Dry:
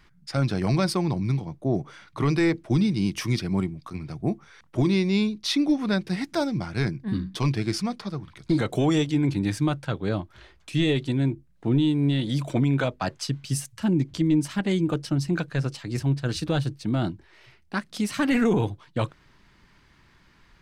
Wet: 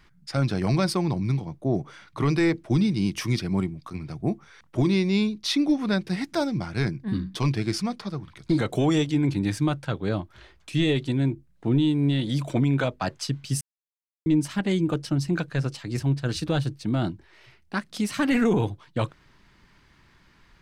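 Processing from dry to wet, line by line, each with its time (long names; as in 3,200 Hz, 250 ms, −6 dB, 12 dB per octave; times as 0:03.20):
0:13.61–0:14.26: silence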